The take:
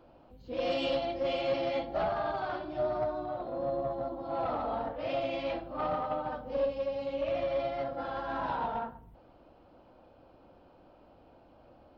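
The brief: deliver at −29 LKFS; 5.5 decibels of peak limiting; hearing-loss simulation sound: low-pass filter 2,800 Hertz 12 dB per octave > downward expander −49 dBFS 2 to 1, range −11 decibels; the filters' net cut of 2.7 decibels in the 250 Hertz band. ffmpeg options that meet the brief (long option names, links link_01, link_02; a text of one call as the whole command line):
ffmpeg -i in.wav -af "equalizer=frequency=250:width_type=o:gain=-3.5,alimiter=level_in=2.5dB:limit=-24dB:level=0:latency=1,volume=-2.5dB,lowpass=2800,agate=range=-11dB:threshold=-49dB:ratio=2,volume=6.5dB" out.wav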